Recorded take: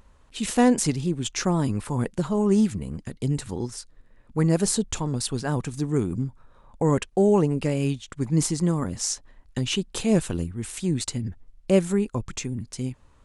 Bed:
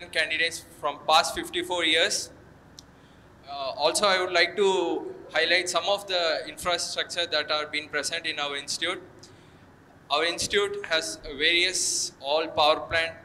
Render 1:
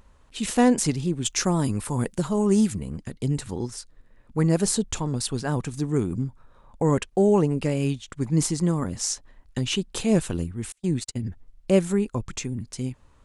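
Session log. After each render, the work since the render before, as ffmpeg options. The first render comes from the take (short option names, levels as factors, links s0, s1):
-filter_complex "[0:a]asettb=1/sr,asplit=3[s0][s1][s2];[s0]atrim=end=1.254[s3];[s1]atrim=start=1.25:end=2.81,asetpts=PTS-STARTPTS,afade=t=in:d=0.004:c=qsin,afade=t=out:st=1.556:d=0.004:c=qsin,highshelf=f=7800:g=12[s4];[s2]atrim=start=2.806[s5];[s3][s4]acrossfade=d=0.004:c1=hsin:c2=qsin[s6];[s6][s5]acrossfade=d=0.004:c1=qsin:c2=hsin,asettb=1/sr,asplit=3[s7][s8][s9];[s7]atrim=end=10.724[s10];[s8]atrim=start=10.72:end=11.23,asetpts=PTS-STARTPTS,afade=t=in:d=0.004:c=qsin,afade=t=out:st=0.506:d=0.004:c=qsin,agate=range=0.0158:threshold=0.0316:ratio=16:release=100:detection=peak[s11];[s9]atrim=start=11.226[s12];[s10][s11]acrossfade=d=0.004:c1=hsin:c2=qsin[s13];[s13][s12]acrossfade=d=0.004:c1=qsin:c2=hsin"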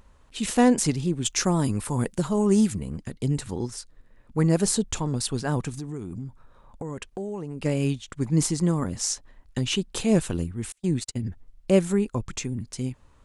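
-filter_complex "[0:a]asplit=3[s0][s1][s2];[s0]afade=t=out:st=5.73:d=0.02[s3];[s1]acompressor=threshold=0.0282:ratio=5:attack=3.2:release=140:knee=1:detection=peak,afade=t=in:st=5.73:d=0.02,afade=t=out:st=7.64:d=0.02[s4];[s2]afade=t=in:st=7.64:d=0.02[s5];[s3][s4][s5]amix=inputs=3:normalize=0"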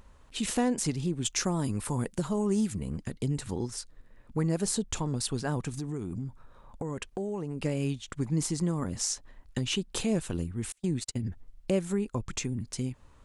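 -af "acompressor=threshold=0.0316:ratio=2"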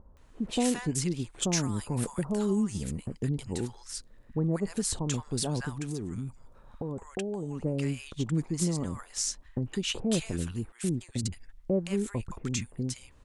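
-filter_complex "[0:a]acrossover=split=1000[s0][s1];[s1]adelay=170[s2];[s0][s2]amix=inputs=2:normalize=0"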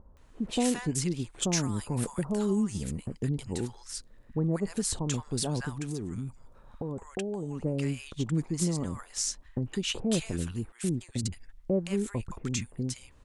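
-af anull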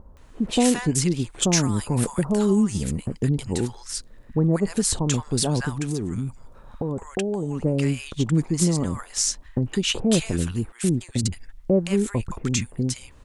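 -af "volume=2.51"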